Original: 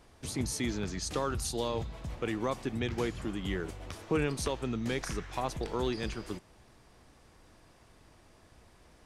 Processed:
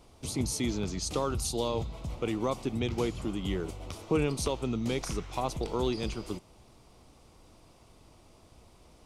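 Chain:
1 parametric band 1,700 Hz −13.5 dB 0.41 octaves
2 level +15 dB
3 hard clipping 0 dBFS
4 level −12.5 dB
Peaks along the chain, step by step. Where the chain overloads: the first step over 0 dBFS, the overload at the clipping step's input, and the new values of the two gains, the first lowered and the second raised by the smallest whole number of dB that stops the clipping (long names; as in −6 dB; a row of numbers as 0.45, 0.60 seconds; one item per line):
−18.0, −3.0, −3.0, −15.5 dBFS
no step passes full scale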